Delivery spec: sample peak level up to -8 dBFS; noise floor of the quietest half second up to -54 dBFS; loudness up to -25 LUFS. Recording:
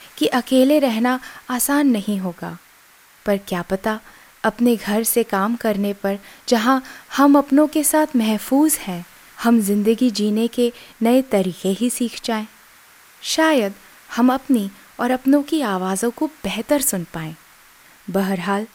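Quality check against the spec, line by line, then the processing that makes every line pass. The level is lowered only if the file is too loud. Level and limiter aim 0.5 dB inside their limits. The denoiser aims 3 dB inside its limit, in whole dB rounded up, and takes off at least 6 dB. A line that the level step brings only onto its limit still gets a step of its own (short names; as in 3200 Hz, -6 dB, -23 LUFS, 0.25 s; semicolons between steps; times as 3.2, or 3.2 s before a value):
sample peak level -3.0 dBFS: fail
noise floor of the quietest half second -50 dBFS: fail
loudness -19.0 LUFS: fail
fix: gain -6.5 dB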